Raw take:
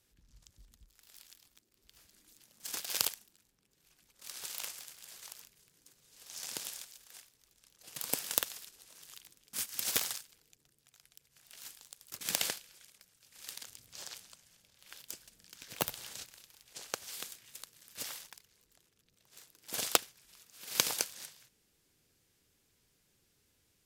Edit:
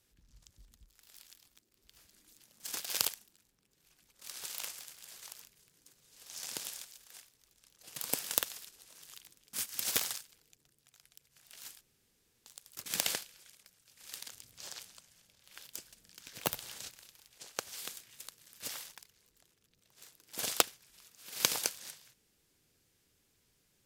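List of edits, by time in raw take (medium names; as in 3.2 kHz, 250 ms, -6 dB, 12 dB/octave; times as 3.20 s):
11.81 s: insert room tone 0.65 s
16.46–16.91 s: fade out equal-power, to -7.5 dB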